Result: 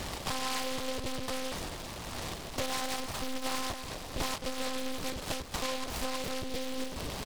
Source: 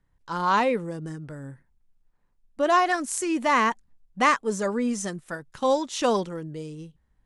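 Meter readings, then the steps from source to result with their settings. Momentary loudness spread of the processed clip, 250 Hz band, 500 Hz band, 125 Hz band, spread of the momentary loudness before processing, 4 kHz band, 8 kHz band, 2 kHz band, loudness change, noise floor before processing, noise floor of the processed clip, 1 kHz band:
5 LU, -10.5 dB, -11.5 dB, -5.0 dB, 17 LU, +1.0 dB, -3.5 dB, -10.0 dB, -11.0 dB, -68 dBFS, -42 dBFS, -13.5 dB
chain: spectral levelling over time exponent 0.4; compression 12:1, threshold -31 dBFS, peak gain reduction 19.5 dB; on a send: feedback delay 252 ms, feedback 44%, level -9 dB; on the sum: monotone LPC vocoder at 8 kHz 260 Hz; delay time shaken by noise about 3.1 kHz, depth 0.15 ms

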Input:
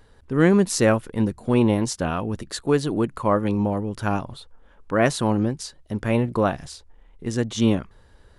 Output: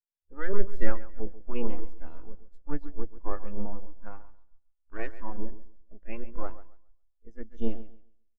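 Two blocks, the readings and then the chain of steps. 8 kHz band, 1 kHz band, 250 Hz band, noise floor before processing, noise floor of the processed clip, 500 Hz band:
under -40 dB, -17.0 dB, -18.5 dB, -54 dBFS, -73 dBFS, -16.0 dB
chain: spectral peaks clipped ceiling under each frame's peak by 15 dB; half-wave rectifier; feedback delay 137 ms, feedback 54%, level -6.5 dB; spectral contrast expander 2.5:1

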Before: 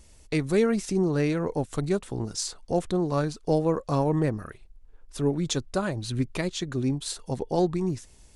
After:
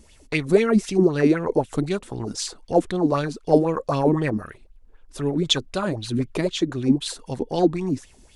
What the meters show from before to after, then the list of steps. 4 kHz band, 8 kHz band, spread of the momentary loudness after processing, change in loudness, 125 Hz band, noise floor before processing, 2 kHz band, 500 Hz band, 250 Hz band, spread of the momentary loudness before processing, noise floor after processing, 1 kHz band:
+8.0 dB, +1.0 dB, 10 LU, +4.5 dB, +1.5 dB, -54 dBFS, +5.5 dB, +5.0 dB, +5.5 dB, 8 LU, -53 dBFS, +5.0 dB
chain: sweeping bell 3.9 Hz 230–3400 Hz +15 dB

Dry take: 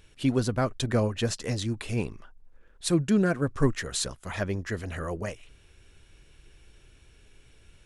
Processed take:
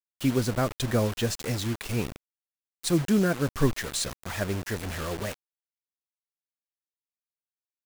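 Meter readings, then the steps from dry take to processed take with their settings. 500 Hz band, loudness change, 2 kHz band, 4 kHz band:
0.0 dB, +0.5 dB, +1.0 dB, +1.5 dB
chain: bit crusher 6-bit

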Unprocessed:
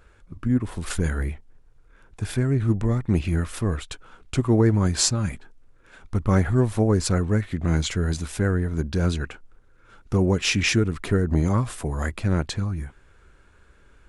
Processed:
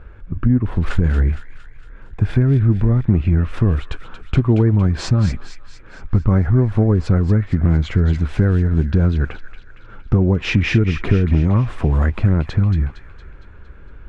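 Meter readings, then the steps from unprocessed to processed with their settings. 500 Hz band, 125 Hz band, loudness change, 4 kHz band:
+2.0 dB, +8.0 dB, +6.0 dB, -3.5 dB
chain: low-pass 2.3 kHz 12 dB/octave; bass shelf 240 Hz +9 dB; compression 4:1, threshold -20 dBFS, peak gain reduction 11 dB; feedback echo behind a high-pass 230 ms, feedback 55%, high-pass 1.6 kHz, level -8.5 dB; trim +8 dB

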